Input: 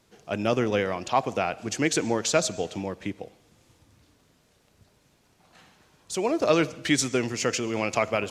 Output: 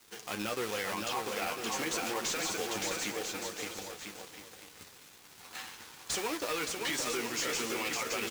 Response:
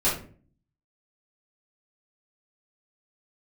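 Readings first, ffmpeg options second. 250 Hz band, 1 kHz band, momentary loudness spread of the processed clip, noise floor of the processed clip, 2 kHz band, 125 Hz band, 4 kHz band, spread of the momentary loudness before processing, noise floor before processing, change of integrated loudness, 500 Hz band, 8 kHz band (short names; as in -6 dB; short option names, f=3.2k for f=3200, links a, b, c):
-12.0 dB, -7.5 dB, 16 LU, -55 dBFS, -4.5 dB, -15.5 dB, -2.0 dB, 11 LU, -65 dBFS, -8.0 dB, -11.0 dB, -3.5 dB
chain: -filter_complex "[0:a]acontrast=77,acrusher=bits=2:mode=log:mix=0:aa=0.000001,acompressor=threshold=-42dB:ratio=2,equalizer=f=630:w=7.2:g=-11.5,flanger=delay=8.8:depth=4.4:regen=40:speed=0.34:shape=sinusoidal,crystalizer=i=5.5:c=0,asplit=2[a][b];[b]highpass=f=720:p=1,volume=20dB,asoftclip=type=tanh:threshold=-8dB[c];[a][c]amix=inputs=2:normalize=0,lowpass=f=1.5k:p=1,volume=-6dB,asplit=2[d][e];[e]aecho=0:1:570|997.5|1318|1559|1739:0.631|0.398|0.251|0.158|0.1[f];[d][f]amix=inputs=2:normalize=0,alimiter=limit=-19.5dB:level=0:latency=1:release=30,aeval=exprs='sgn(val(0))*max(abs(val(0))-0.00447,0)':c=same,volume=-4dB"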